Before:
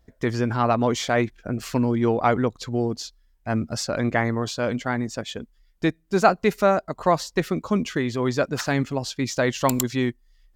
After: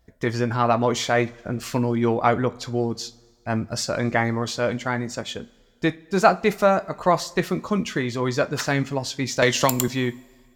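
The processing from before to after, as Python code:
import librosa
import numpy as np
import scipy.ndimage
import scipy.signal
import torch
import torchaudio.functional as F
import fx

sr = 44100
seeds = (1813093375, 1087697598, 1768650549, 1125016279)

y = fx.low_shelf(x, sr, hz=450.0, db=-3.0)
y = fx.rev_double_slope(y, sr, seeds[0], early_s=0.22, late_s=1.8, knee_db=-22, drr_db=9.5)
y = fx.band_squash(y, sr, depth_pct=100, at=(9.42, 9.88))
y = y * librosa.db_to_amplitude(1.5)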